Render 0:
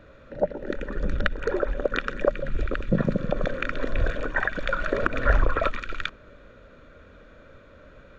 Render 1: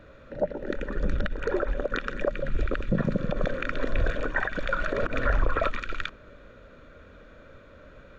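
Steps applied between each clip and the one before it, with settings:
brickwall limiter −14.5 dBFS, peak gain reduction 10 dB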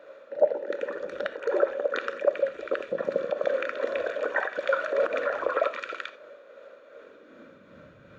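shaped tremolo triangle 2.6 Hz, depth 45%
high-pass filter sweep 520 Hz → 120 Hz, 0:06.89–0:07.93
reverb whose tail is shaped and stops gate 110 ms flat, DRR 10.5 dB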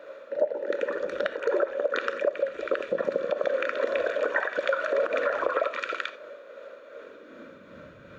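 parametric band 130 Hz −3 dB 1.3 octaves
notch filter 780 Hz, Q 12
downward compressor 6 to 1, threshold −26 dBFS, peak gain reduction 11 dB
level +4.5 dB

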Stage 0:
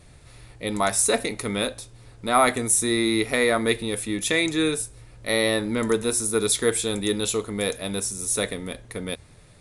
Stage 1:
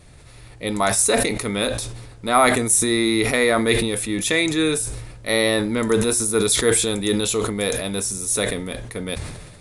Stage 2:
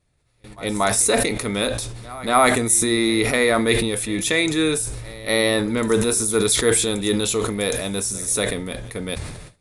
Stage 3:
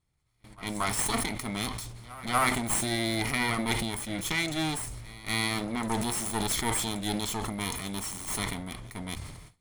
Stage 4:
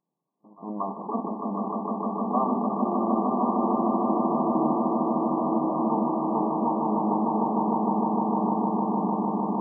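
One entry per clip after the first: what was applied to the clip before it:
level that may fall only so fast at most 44 dB per second; level +2.5 dB
echo ahead of the sound 238 ms −19.5 dB; noise gate with hold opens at −28 dBFS
lower of the sound and its delayed copy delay 0.94 ms; level −8.5 dB
linear-phase brick-wall band-pass 160–1,200 Hz; on a send: echo that builds up and dies away 152 ms, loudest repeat 8, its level −4.5 dB; on the sum: level +2.5 dB

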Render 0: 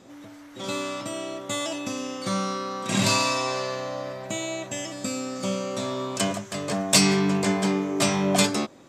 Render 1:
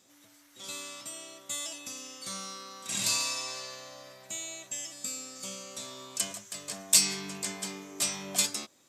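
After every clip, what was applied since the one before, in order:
first-order pre-emphasis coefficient 0.9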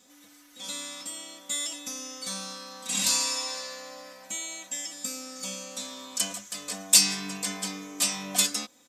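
comb filter 4 ms, depth 88%
level +1.5 dB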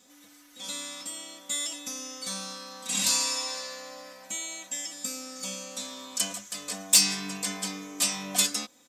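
soft clipping −7 dBFS, distortion −21 dB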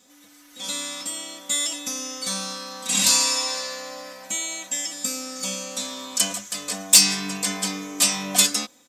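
automatic gain control gain up to 5 dB
level +2 dB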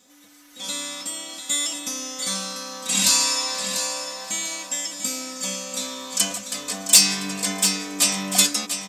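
repeating echo 693 ms, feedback 31%, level −8.5 dB

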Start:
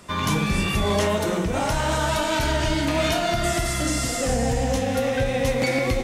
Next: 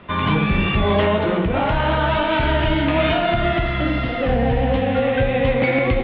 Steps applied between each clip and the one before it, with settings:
Butterworth low-pass 3,400 Hz 48 dB per octave
level +4.5 dB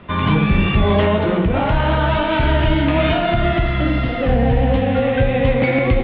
low-shelf EQ 280 Hz +5 dB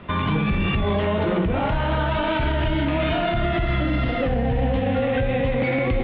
brickwall limiter −14 dBFS, peak gain reduction 10 dB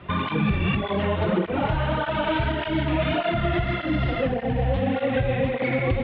through-zero flanger with one copy inverted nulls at 1.7 Hz, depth 4.9 ms
level +1.5 dB

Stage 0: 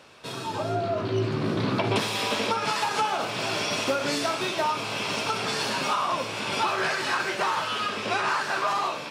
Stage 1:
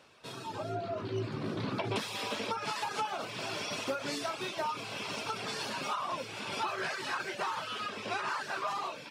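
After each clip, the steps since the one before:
reverb reduction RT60 0.54 s
level −8 dB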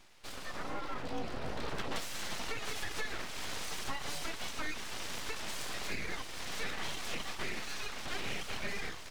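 in parallel at −1 dB: brickwall limiter −31 dBFS, peak gain reduction 9 dB
on the sum: full-wave rectification
level −4 dB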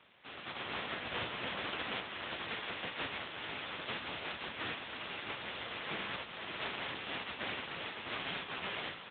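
compressing power law on the bin magnitudes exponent 0.14
echo with shifted repeats 471 ms, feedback 61%, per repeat −73 Hz, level −17 dB
level +4 dB
AMR narrowband 6.7 kbit/s 8,000 Hz

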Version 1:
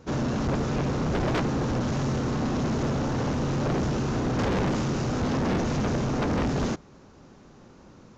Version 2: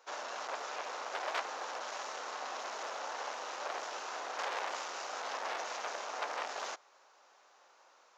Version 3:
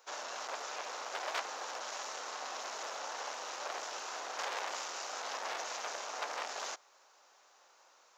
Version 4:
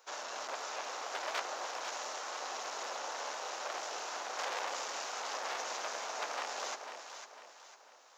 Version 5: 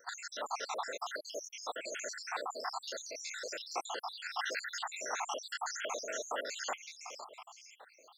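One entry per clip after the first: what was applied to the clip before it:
high-pass filter 660 Hz 24 dB per octave; level −4.5 dB
high-shelf EQ 5,100 Hz +10 dB; level −2 dB
delay that swaps between a low-pass and a high-pass 250 ms, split 880 Hz, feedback 63%, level −4 dB
time-frequency cells dropped at random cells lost 78%; level +7 dB

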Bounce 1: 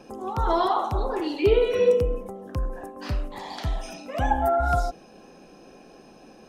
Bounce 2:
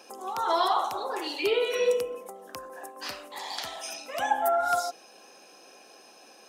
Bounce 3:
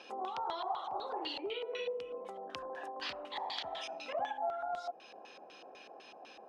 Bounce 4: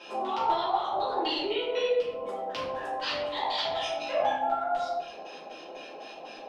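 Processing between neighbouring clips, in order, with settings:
Bessel high-pass filter 680 Hz, order 2; high-shelf EQ 4,000 Hz +10 dB
downward compressor 8 to 1, threshold −36 dBFS, peak gain reduction 16.5 dB; auto-filter low-pass square 4 Hz 790–3,400 Hz; level −2.5 dB
rectangular room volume 130 cubic metres, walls mixed, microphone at 2.8 metres

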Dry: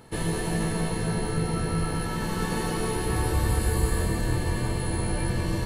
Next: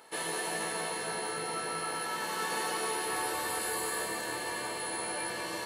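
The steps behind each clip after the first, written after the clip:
high-pass filter 600 Hz 12 dB per octave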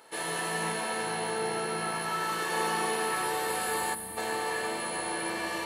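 spring reverb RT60 3.1 s, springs 36 ms, chirp 70 ms, DRR −2 dB
gain on a spectral selection 0:03.94–0:04.17, 310–8,100 Hz −13 dB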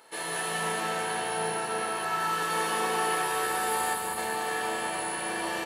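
low-shelf EQ 460 Hz −3 dB
bouncing-ball delay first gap 190 ms, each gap 0.6×, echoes 5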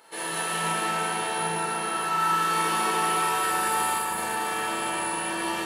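four-comb reverb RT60 0.39 s, combs from 33 ms, DRR 0 dB

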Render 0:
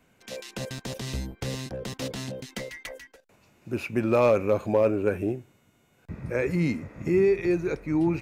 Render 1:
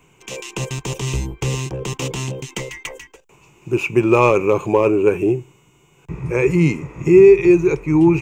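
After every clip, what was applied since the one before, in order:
EQ curve with evenly spaced ripples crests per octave 0.71, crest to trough 12 dB
level +7.5 dB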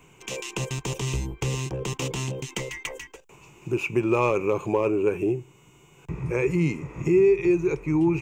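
downward compressor 1.5 to 1, threshold −34 dBFS, peak gain reduction 10 dB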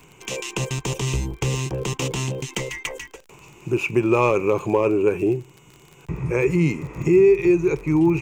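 surface crackle 33 per second −37 dBFS
level +4 dB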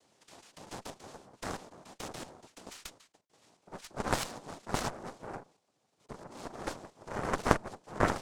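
cochlear-implant simulation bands 2
square-wave tremolo 1.5 Hz, depth 60%, duty 35%
harmonic generator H 3 −8 dB, 4 −12 dB, 6 −31 dB, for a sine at 0 dBFS
level −3.5 dB

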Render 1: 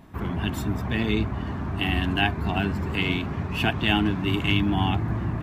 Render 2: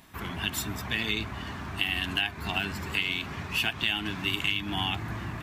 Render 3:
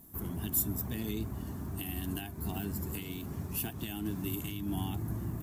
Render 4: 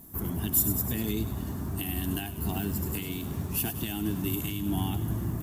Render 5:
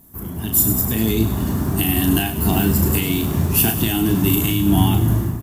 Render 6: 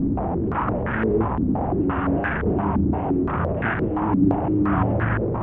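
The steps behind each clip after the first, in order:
tilt shelving filter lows −9.5 dB, about 1,400 Hz; downward compressor 6 to 1, threshold −24 dBFS, peak gain reduction 9.5 dB
drawn EQ curve 330 Hz 0 dB, 2,400 Hz −22 dB, 4,000 Hz −16 dB, 13,000 Hz +11 dB; tape wow and flutter 29 cents
delay with a high-pass on its return 100 ms, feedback 59%, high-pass 3,600 Hz, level −8 dB; level +5.5 dB
automatic gain control gain up to 13.5 dB; double-tracking delay 36 ms −6 dB
linear delta modulator 16 kbit/s, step −13 dBFS; low-pass on a step sequencer 5.8 Hz 280–1,600 Hz; level −7 dB

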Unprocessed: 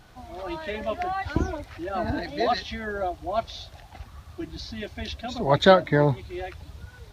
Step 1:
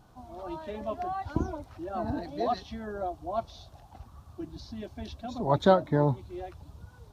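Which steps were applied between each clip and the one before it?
octave-band graphic EQ 125/250/1,000/2,000/4,000 Hz +3/+4/+6/−11/−3 dB
level −7 dB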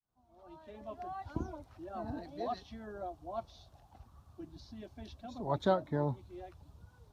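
fade in at the beginning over 1.20 s
level −8.5 dB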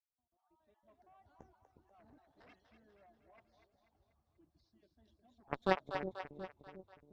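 time-frequency cells dropped at random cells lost 26%
harmonic generator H 3 −9 dB, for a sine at −17.5 dBFS
echo with a time of its own for lows and highs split 500 Hz, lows 360 ms, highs 243 ms, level −7.5 dB
level +2.5 dB

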